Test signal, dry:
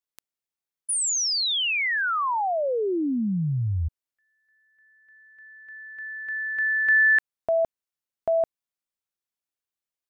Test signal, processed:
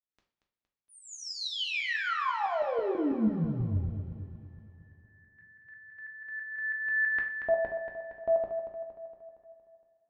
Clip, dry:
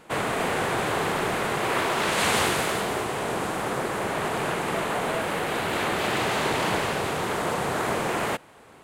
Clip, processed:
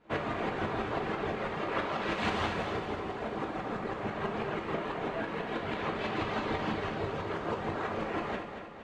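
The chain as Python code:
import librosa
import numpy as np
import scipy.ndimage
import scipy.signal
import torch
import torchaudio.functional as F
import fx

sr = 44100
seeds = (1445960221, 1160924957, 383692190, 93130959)

p1 = fx.dereverb_blind(x, sr, rt60_s=1.6)
p2 = fx.low_shelf(p1, sr, hz=400.0, db=4.0)
p3 = fx.tremolo_shape(p2, sr, shape='saw_up', hz=6.1, depth_pct=80)
p4 = fx.air_absorb(p3, sr, metres=200.0)
p5 = p4 + fx.echo_feedback(p4, sr, ms=232, feedback_pct=54, wet_db=-8.5, dry=0)
p6 = fx.rev_double_slope(p5, sr, seeds[0], early_s=0.4, late_s=3.4, knee_db=-22, drr_db=1.5)
y = p6 * librosa.db_to_amplitude(-4.0)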